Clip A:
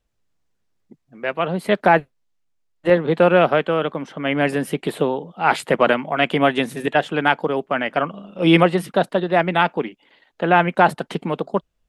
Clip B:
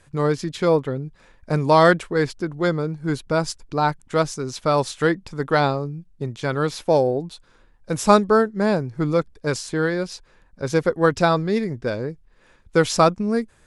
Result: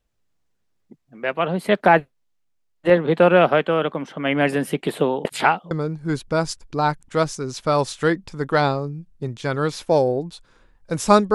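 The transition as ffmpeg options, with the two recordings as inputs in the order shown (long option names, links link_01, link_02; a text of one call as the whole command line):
ffmpeg -i cue0.wav -i cue1.wav -filter_complex "[0:a]apad=whole_dur=11.34,atrim=end=11.34,asplit=2[link_01][link_02];[link_01]atrim=end=5.252[link_03];[link_02]atrim=start=5.248:end=5.712,asetpts=PTS-STARTPTS,areverse[link_04];[1:a]atrim=start=2.698:end=8.33[link_05];[link_03][link_04]acrossfade=duration=0.004:curve1=hsin:curve2=hsin[link_06];[link_06][link_05]acrossfade=duration=0.004:curve1=hsin:curve2=hsin" out.wav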